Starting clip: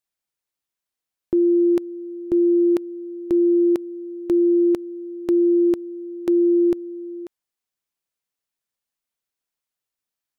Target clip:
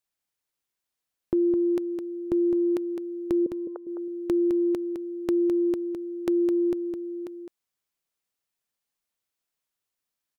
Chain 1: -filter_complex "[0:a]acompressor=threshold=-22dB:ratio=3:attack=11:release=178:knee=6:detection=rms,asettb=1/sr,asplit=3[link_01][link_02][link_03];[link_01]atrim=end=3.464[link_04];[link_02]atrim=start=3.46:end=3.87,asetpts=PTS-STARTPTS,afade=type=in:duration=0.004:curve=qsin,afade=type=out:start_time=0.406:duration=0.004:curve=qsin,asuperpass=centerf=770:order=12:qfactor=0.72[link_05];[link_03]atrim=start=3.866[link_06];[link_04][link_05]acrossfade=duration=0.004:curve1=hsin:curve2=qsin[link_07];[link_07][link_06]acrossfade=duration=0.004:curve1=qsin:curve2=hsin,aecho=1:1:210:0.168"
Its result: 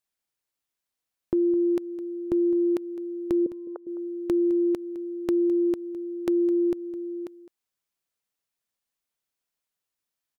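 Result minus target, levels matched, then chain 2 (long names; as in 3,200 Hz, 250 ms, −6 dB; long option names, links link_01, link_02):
echo-to-direct −8.5 dB
-filter_complex "[0:a]acompressor=threshold=-22dB:ratio=3:attack=11:release=178:knee=6:detection=rms,asettb=1/sr,asplit=3[link_01][link_02][link_03];[link_01]atrim=end=3.464[link_04];[link_02]atrim=start=3.46:end=3.87,asetpts=PTS-STARTPTS,afade=type=in:duration=0.004:curve=qsin,afade=type=out:start_time=0.406:duration=0.004:curve=qsin,asuperpass=centerf=770:order=12:qfactor=0.72[link_05];[link_03]atrim=start=3.866[link_06];[link_04][link_05]acrossfade=duration=0.004:curve1=hsin:curve2=qsin[link_07];[link_07][link_06]acrossfade=duration=0.004:curve1=qsin:curve2=hsin,aecho=1:1:210:0.447"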